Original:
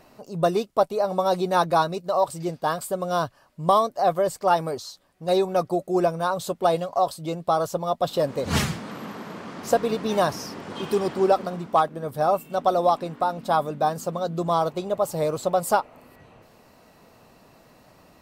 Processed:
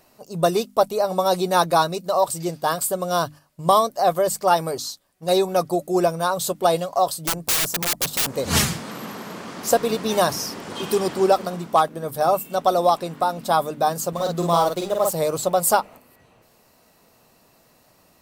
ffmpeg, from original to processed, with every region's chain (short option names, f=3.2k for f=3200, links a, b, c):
-filter_complex "[0:a]asettb=1/sr,asplit=3[a][b][c];[a]atrim=end=7.244[d];[b]atrim=start=7.24:end=8.34,asetpts=PTS-STARTPTS,afade=t=in:d=0.004:c=qsin,afade=t=out:st=1.096:d=0.004:c=qsin,equalizer=f=3.4k:w=1.2:g=-8.5,aeval=exprs='(mod(15*val(0)+1,2)-1)/15':c=same[e];[c]atrim=start=8.336[f];[d][e]acrossfade=d=0.004:c1=hsin:c2=qsin[g];[g][f]acrossfade=d=0.004:c1=qsin:c2=hsin,asettb=1/sr,asplit=3[h][i][j];[h]atrim=end=14.134[k];[i]atrim=start=14.13:end=15.13,asetpts=PTS-STARTPTS,afade=t=in:d=0.004:c=qsin,afade=t=out:st=0.996:d=0.004:c=qsin,highpass=f=62:w=0.5412,highpass=f=62:w=1.3066,aeval=exprs='sgn(val(0))*max(abs(val(0))-0.00562,0)':c=same,asplit=2[l][m];[m]adelay=47,volume=-3dB[n];[l][n]amix=inputs=2:normalize=0,atrim=end_sample=44100[o];[j]atrim=start=15.126[p];[k][o]acrossfade=d=0.004:c1=hsin:c2=qsin[q];[q][p]acrossfade=d=0.004:c1=qsin:c2=hsin,agate=range=-7dB:threshold=-41dB:ratio=16:detection=peak,highshelf=f=5.1k:g=12,bandreject=f=50:t=h:w=6,bandreject=f=100:t=h:w=6,bandreject=f=150:t=h:w=6,bandreject=f=200:t=h:w=6,bandreject=f=250:t=h:w=6,bandreject=f=300:t=h:w=6,volume=2dB"